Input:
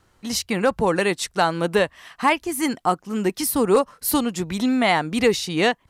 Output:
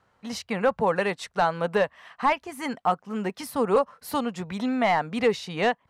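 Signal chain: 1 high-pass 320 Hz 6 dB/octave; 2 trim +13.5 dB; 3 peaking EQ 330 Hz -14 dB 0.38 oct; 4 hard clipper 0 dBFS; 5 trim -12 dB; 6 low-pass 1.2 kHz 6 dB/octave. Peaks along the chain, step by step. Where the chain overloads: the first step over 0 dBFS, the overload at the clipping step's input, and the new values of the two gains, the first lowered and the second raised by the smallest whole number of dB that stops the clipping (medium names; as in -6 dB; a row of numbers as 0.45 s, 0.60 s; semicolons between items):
-6.0 dBFS, +7.5 dBFS, +7.5 dBFS, 0.0 dBFS, -12.0 dBFS, -12.0 dBFS; step 2, 7.5 dB; step 2 +5.5 dB, step 5 -4 dB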